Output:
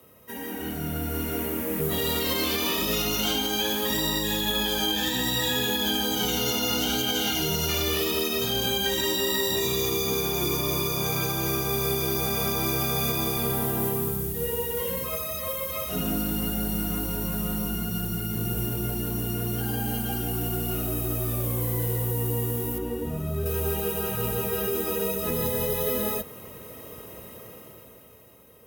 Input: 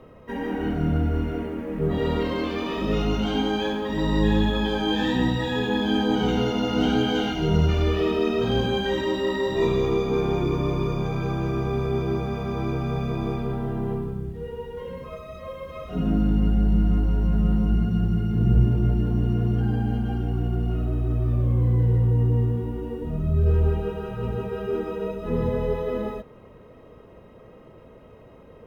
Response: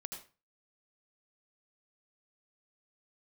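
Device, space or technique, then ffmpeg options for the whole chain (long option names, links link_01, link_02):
FM broadcast chain: -filter_complex "[0:a]asettb=1/sr,asplit=3[link_01][link_02][link_03];[link_01]atrim=end=22.784[link_04];[link_02]atrim=start=22.78:end=23.46,asetpts=PTS-STARTPTS,afade=type=in:duration=0.004:curve=qsin,afade=type=out:start_time=0.676:duration=0.004:curve=qsin,highshelf=frequency=4100:gain=-11.5[link_05];[link_03]atrim=start=23.456[link_06];[link_04][link_05]acrossfade=duration=0.004:curve1=hsin:curve2=qsin[link_07];[link_07][link_06]acrossfade=duration=0.004:curve1=qsin:curve2=hsin,highpass=frequency=57:width=0.5412,highpass=frequency=57:width=1.3066,dynaudnorm=framelen=120:gausssize=21:maxgain=15dB,acrossover=split=110|330|3000[link_08][link_09][link_10][link_11];[link_08]acompressor=threshold=-28dB:ratio=4[link_12];[link_09]acompressor=threshold=-25dB:ratio=4[link_13];[link_10]acompressor=threshold=-20dB:ratio=4[link_14];[link_11]acompressor=threshold=-32dB:ratio=4[link_15];[link_12][link_13][link_14][link_15]amix=inputs=4:normalize=0,aemphasis=mode=production:type=75fm,alimiter=limit=-11dB:level=0:latency=1:release=126,asoftclip=type=hard:threshold=-12.5dB,lowpass=frequency=15000:width=0.5412,lowpass=frequency=15000:width=1.3066,aemphasis=mode=production:type=75fm,volume=-7dB"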